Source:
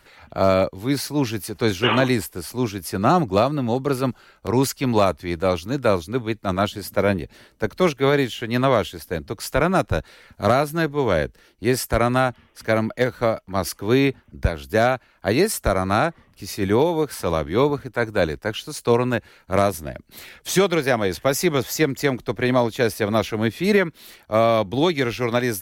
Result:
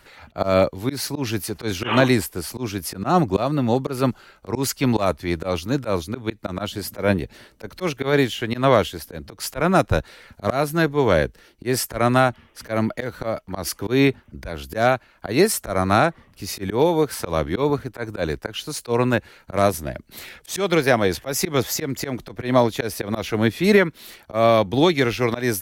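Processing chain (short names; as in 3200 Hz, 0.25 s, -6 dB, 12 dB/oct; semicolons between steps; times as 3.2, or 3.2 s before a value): auto swell 0.141 s; gain +2.5 dB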